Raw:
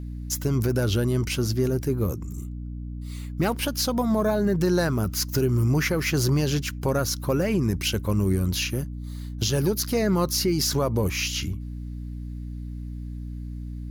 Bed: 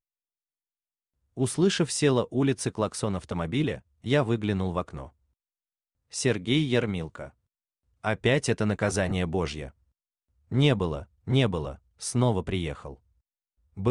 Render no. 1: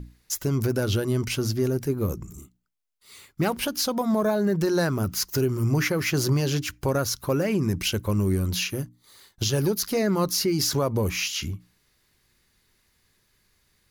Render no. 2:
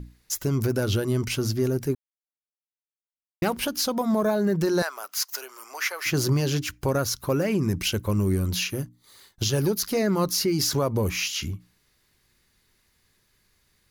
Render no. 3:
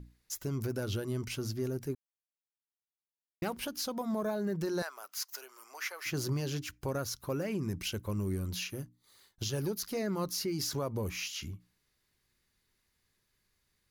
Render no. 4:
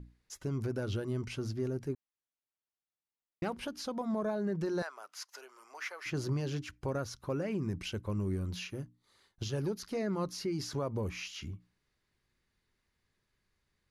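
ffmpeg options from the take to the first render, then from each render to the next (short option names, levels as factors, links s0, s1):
-af "bandreject=f=60:t=h:w=6,bandreject=f=120:t=h:w=6,bandreject=f=180:t=h:w=6,bandreject=f=240:t=h:w=6,bandreject=f=300:t=h:w=6"
-filter_complex "[0:a]asettb=1/sr,asplit=3[s0][s1][s2];[s0]atrim=end=4.824[s3];[s1]atrim=start=4.82:end=6.06,asetpts=PTS-STARTPTS,afade=t=in:d=0.004:c=qsin,afade=t=out:st=1.236:d=0.004:c=qsin,highpass=f=690:w=0.5412,highpass=f=690:w=1.3066[s4];[s2]atrim=start=6.056[s5];[s3][s4]acrossfade=d=0.004:c1=hsin:c2=qsin[s6];[s6][s5]acrossfade=d=0.004:c1=qsin:c2=hsin,asplit=3[s7][s8][s9];[s7]atrim=end=1.95,asetpts=PTS-STARTPTS,afade=t=out:st=1.946:d=0.004:c=hsin[s10];[s8]atrim=start=1.95:end=3.42,asetpts=PTS-STARTPTS,volume=0[s11];[s9]atrim=start=3.42,asetpts=PTS-STARTPTS,afade=t=in:d=0.004:c=hsin[s12];[s10][s11][s12]concat=n=3:v=0:a=1"
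-af "volume=0.299"
-af "lowpass=f=11000:w=0.5412,lowpass=f=11000:w=1.3066,highshelf=f=4200:g=-10.5"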